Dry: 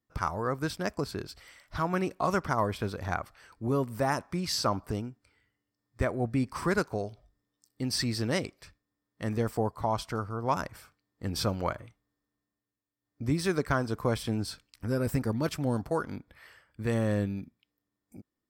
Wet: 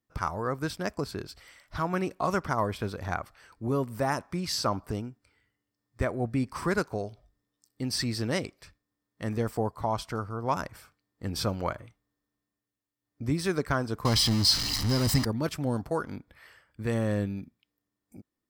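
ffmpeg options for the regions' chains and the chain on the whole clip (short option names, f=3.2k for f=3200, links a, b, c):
-filter_complex "[0:a]asettb=1/sr,asplit=3[a][b][c];[a]atrim=end=14.054[d];[b]atrim=start=14.05:end=15.25,asetpts=PTS-STARTPTS,afade=t=in:d=0.004:c=qsin,afade=t=out:st=1.196:d=0.004:c=qsin,aeval=exprs='val(0)+0.5*0.0316*sgn(val(0))':c=same,equalizer=f=4.8k:w=1.7:g=14,aecho=1:1:1:0.5,atrim=end_sample=52920[e];[c]atrim=start=15.246[f];[d][e]acrossfade=d=0.004:c1=hsin:c2=qsin[g];[g][f]acrossfade=d=0.004:c1=qsin:c2=hsin"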